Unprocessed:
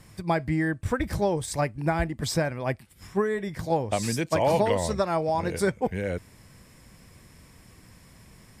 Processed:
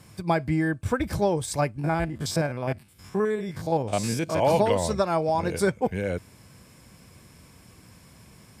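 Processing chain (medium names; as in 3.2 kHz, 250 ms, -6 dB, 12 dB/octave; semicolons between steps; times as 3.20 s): 1.79–4.43 s: spectrogram pixelated in time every 50 ms; high-pass 63 Hz; band-stop 1.9 kHz, Q 9.2; trim +1.5 dB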